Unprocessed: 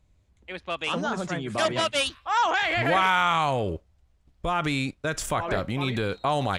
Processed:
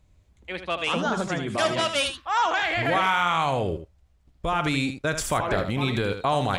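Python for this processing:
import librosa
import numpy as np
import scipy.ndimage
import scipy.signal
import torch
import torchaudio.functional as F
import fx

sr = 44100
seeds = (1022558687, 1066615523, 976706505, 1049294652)

p1 = fx.rider(x, sr, range_db=10, speed_s=0.5)
p2 = x + (p1 * librosa.db_to_amplitude(0.0))
p3 = p2 + 10.0 ** (-9.0 / 20.0) * np.pad(p2, (int(79 * sr / 1000.0), 0))[:len(p2)]
y = p3 * librosa.db_to_amplitude(-5.5)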